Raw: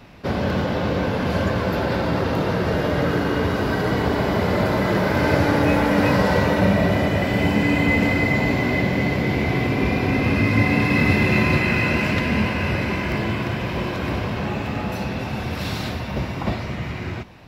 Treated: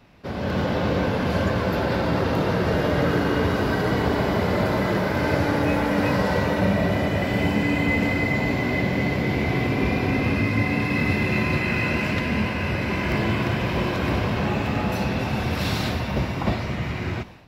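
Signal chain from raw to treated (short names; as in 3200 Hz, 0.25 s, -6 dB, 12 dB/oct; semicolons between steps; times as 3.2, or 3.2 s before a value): AGC; gain -8.5 dB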